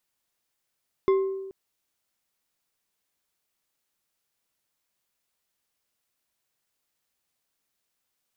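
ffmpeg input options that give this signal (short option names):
-f lavfi -i "aevalsrc='0.158*pow(10,-3*t/1.18)*sin(2*PI*386*t)+0.0473*pow(10,-3*t/0.58)*sin(2*PI*1064.2*t)+0.0141*pow(10,-3*t/0.362)*sin(2*PI*2085.9*t)+0.00422*pow(10,-3*t/0.255)*sin(2*PI*3448.1*t)+0.00126*pow(10,-3*t/0.192)*sin(2*PI*5149.2*t)':d=0.43:s=44100"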